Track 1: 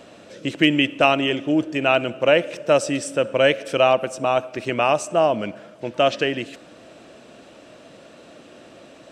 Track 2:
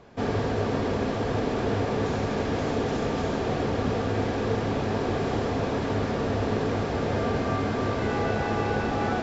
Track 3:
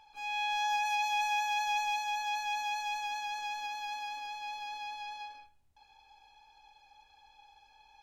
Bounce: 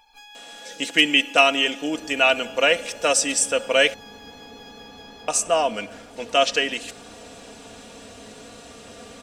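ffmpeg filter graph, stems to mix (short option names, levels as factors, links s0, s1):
-filter_complex "[0:a]highpass=f=630:p=1,equalizer=f=7400:w=0.54:g=7.5,adelay=350,volume=0.944,asplit=3[s0][s1][s2];[s0]atrim=end=3.94,asetpts=PTS-STARTPTS,afade=t=out:st=3.936:d=0.004:c=hsin[s3];[s1]atrim=start=3.94:end=5.28,asetpts=PTS-STARTPTS,volume=0[s4];[s2]atrim=start=5.28,asetpts=PTS-STARTPTS,afade=t=in:d=0.004:c=hsin[s5];[s3][s4][s5]concat=n=3:v=0:a=1[s6];[1:a]aeval=exprs='sgn(val(0))*max(abs(val(0))-0.00447,0)':c=same,adelay=1750,volume=0.1[s7];[2:a]acompressor=threshold=0.00794:ratio=12,volume=1.33[s8];[s6][s7][s8]amix=inputs=3:normalize=0,highshelf=f=7700:g=8,aecho=1:1:4.2:0.6"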